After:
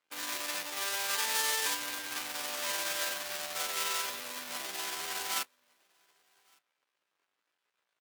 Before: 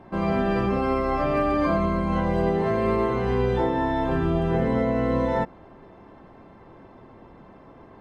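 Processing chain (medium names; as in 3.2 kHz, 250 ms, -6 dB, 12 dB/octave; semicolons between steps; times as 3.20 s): treble shelf 2.1 kHz -12 dB; fuzz box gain 38 dB, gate -48 dBFS; differentiator; pitch shift +7 st; delay 1159 ms -13.5 dB; on a send at -20.5 dB: reverberation RT60 0.60 s, pre-delay 7 ms; on the sum: upward expansion 2.5:1, over -50 dBFS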